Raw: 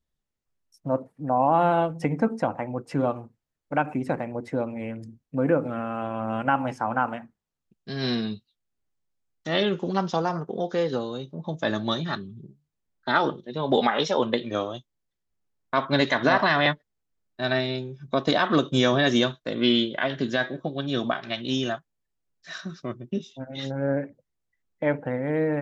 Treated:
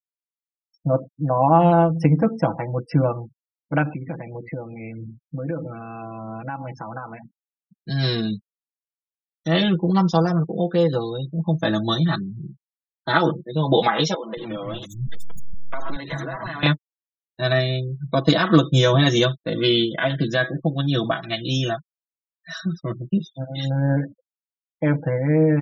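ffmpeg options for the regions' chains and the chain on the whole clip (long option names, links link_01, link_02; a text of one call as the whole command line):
ffmpeg -i in.wav -filter_complex "[0:a]asettb=1/sr,asplit=3[link_01][link_02][link_03];[link_01]atrim=end=3.944[link_04];[link_02]atrim=start=3.94:end=7.9,asetpts=PTS-STARTPTS,afade=type=in:duration=0.004:curve=qsin,afade=type=out:start_time=3.956:duration=0.004:curve=qsin,equalizer=frequency=2300:width_type=o:width=0.48:gain=6,bandreject=frequency=2800:width=18,acompressor=threshold=-36dB:ratio=2.5:attack=3.2:release=140:knee=1:detection=peak[link_05];[link_03]atrim=start=7.896[link_06];[link_04][link_05]acrossfade=duration=0.004:curve1=hsin:curve2=qsin[link_07];[link_07][link_06]acrossfade=duration=0.004:curve1=qsin:curve2=hsin,asettb=1/sr,asplit=3[link_08][link_09][link_10];[link_08]atrim=end=14.144[link_11];[link_09]atrim=start=14.14:end=16.63,asetpts=PTS-STARTPTS,afade=type=in:duration=0.004:curve=qsin,afade=type=out:start_time=2.486:duration=0.004:curve=qsin,aeval=exprs='val(0)+0.5*0.0422*sgn(val(0))':channel_layout=same,acompressor=threshold=-29dB:ratio=20:attack=3.2:release=140:knee=1:detection=peak,acrossover=split=220|4600[link_12][link_13][link_14];[link_14]adelay=80[link_15];[link_12]adelay=230[link_16];[link_16][link_13][link_15]amix=inputs=3:normalize=0,atrim=end_sample=109809[link_17];[link_10]atrim=start=16.626[link_18];[link_11][link_17]acrossfade=duration=0.004:curve1=hsin:curve2=qsin[link_19];[link_19][link_18]acrossfade=duration=0.004:curve1=qsin:curve2=hsin,afftfilt=real='re*gte(hypot(re,im),0.01)':imag='im*gte(hypot(re,im),0.01)':win_size=1024:overlap=0.75,bass=frequency=250:gain=8,treble=frequency=4000:gain=4,aecho=1:1:6.1:0.96" out.wav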